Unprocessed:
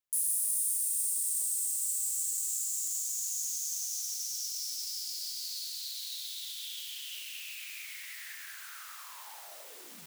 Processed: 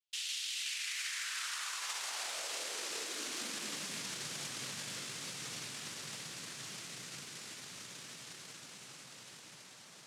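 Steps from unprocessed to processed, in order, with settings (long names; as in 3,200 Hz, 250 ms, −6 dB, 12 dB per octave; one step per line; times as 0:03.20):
cochlear-implant simulation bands 1
dynamic equaliser 780 Hz, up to −6 dB, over −58 dBFS, Q 1.2
high-pass filter sweep 3,000 Hz → 130 Hz, 0:00.49–0:04.32
level −3.5 dB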